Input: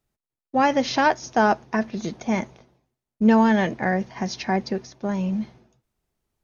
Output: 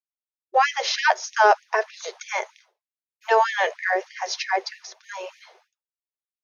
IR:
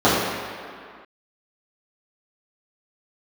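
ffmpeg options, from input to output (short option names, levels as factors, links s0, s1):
-af "agate=range=0.0224:threshold=0.00355:ratio=3:detection=peak,afftfilt=real='re*gte(b*sr/1024,350*pow(1800/350,0.5+0.5*sin(2*PI*3.2*pts/sr)))':imag='im*gte(b*sr/1024,350*pow(1800/350,0.5+0.5*sin(2*PI*3.2*pts/sr)))':win_size=1024:overlap=0.75,volume=1.68"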